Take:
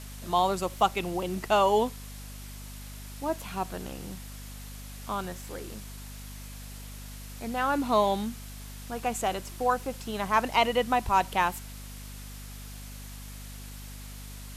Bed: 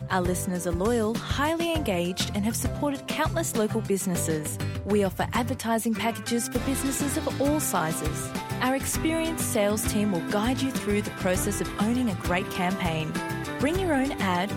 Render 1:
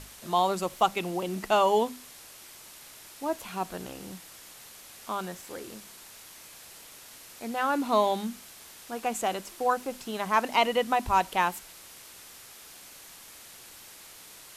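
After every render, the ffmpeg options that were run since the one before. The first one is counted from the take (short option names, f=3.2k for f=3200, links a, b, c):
-af "bandreject=f=50:t=h:w=6,bandreject=f=100:t=h:w=6,bandreject=f=150:t=h:w=6,bandreject=f=200:t=h:w=6,bandreject=f=250:t=h:w=6"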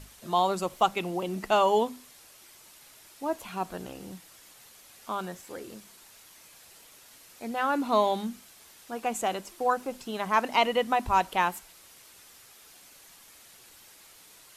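-af "afftdn=nr=6:nf=-49"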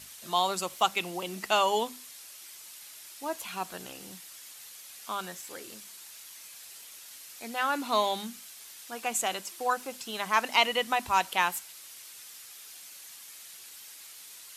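-af "highpass=87,tiltshelf=f=1.3k:g=-7"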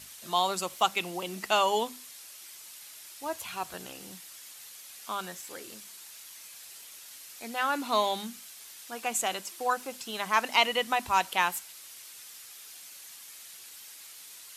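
-filter_complex "[0:a]asettb=1/sr,asplit=3[a][b][c];[a]atrim=end=3.184[d];[b]atrim=start=3.18:end=3.74,asetpts=PTS-STARTPTS,afade=t=in:d=0.004:c=qsin,afade=t=out:st=0.556:d=0.004:c=qsin,lowshelf=f=150:t=q:w=3:g=7[e];[c]atrim=start=3.736[f];[d][e]acrossfade=d=0.004:c1=hsin:c2=qsin[g];[g][f]acrossfade=d=0.004:c1=qsin:c2=hsin"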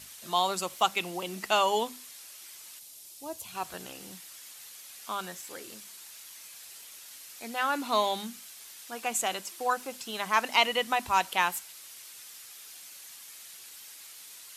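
-filter_complex "[0:a]asettb=1/sr,asplit=3[a][b][c];[a]atrim=end=2.794[d];[b]atrim=start=2.79:end=3.55,asetpts=PTS-STARTPTS,afade=t=in:d=0.004:c=qsin,afade=t=out:st=0.756:d=0.004:c=qsin,equalizer=f=1.6k:t=o:w=1.8:g=-13.5[e];[c]atrim=start=3.546[f];[d][e]acrossfade=d=0.004:c1=hsin:c2=qsin[g];[g][f]acrossfade=d=0.004:c1=qsin:c2=hsin"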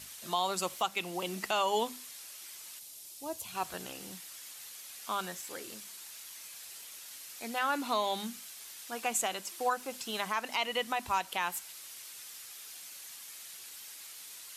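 -af "alimiter=limit=-19dB:level=0:latency=1:release=280"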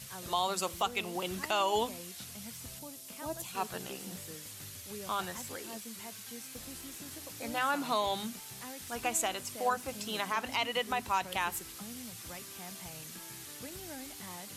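-filter_complex "[1:a]volume=-22dB[a];[0:a][a]amix=inputs=2:normalize=0"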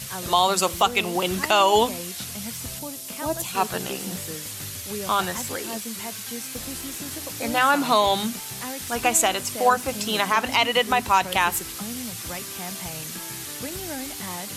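-af "volume=12dB"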